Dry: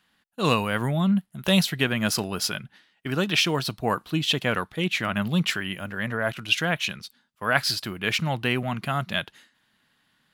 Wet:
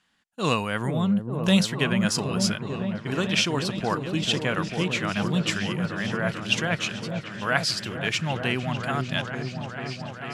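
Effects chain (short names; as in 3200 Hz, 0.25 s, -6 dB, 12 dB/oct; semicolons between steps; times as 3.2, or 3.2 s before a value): synth low-pass 7700 Hz, resonance Q 1.6; bell 4000 Hz -2.5 dB 0.4 oct; on a send: repeats that get brighter 0.445 s, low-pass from 400 Hz, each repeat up 1 oct, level -3 dB; on the sum: gain -2 dB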